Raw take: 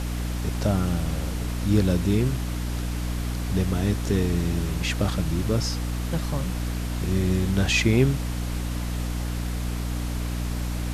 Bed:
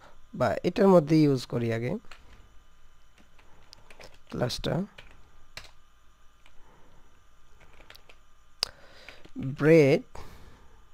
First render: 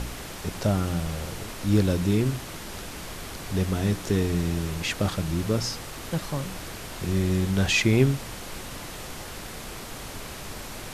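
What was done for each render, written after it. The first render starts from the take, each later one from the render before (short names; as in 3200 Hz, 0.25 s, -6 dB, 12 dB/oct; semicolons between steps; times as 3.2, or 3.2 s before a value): de-hum 60 Hz, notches 5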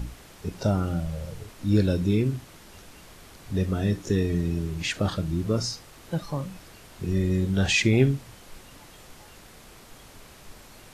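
noise print and reduce 11 dB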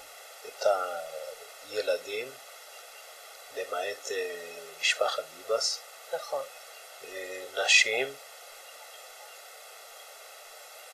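inverse Chebyshev high-pass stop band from 210 Hz, stop band 40 dB; comb 1.5 ms, depth 96%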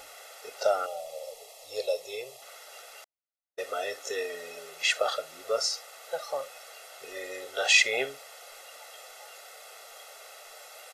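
0.86–2.42 fixed phaser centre 620 Hz, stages 4; 3.04–3.6 gate -36 dBFS, range -57 dB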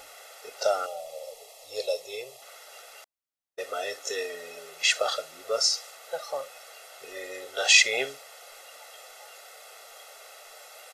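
dynamic EQ 5800 Hz, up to +6 dB, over -44 dBFS, Q 0.75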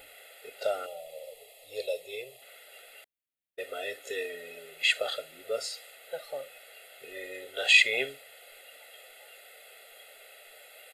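fixed phaser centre 2500 Hz, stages 4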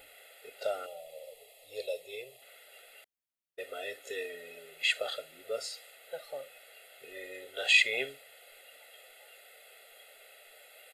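gain -3.5 dB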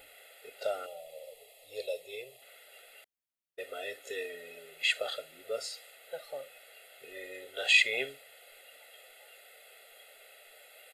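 nothing audible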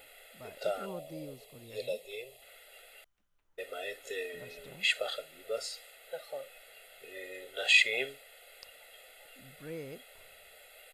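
add bed -24 dB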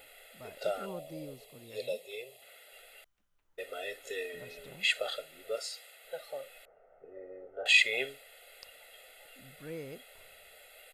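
1.52–2.72 HPF 110 Hz; 5.55–6.05 HPF 440 Hz 6 dB/oct; 6.65–7.66 LPF 1100 Hz 24 dB/oct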